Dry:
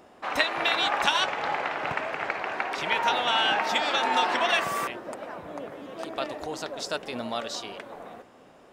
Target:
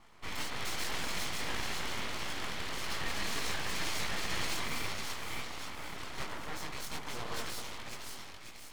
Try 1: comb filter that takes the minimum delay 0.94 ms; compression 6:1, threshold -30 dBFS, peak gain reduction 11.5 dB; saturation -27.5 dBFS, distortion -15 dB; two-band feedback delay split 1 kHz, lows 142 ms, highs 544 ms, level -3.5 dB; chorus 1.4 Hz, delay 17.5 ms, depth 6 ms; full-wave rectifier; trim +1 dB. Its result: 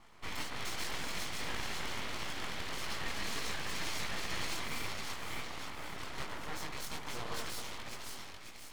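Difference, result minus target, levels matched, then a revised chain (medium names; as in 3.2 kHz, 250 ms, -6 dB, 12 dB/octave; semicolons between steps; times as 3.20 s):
compression: peak gain reduction +5 dB
comb filter that takes the minimum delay 0.94 ms; compression 6:1, threshold -24 dBFS, peak gain reduction 6.5 dB; saturation -27.5 dBFS, distortion -11 dB; two-band feedback delay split 1 kHz, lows 142 ms, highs 544 ms, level -3.5 dB; chorus 1.4 Hz, delay 17.5 ms, depth 6 ms; full-wave rectifier; trim +1 dB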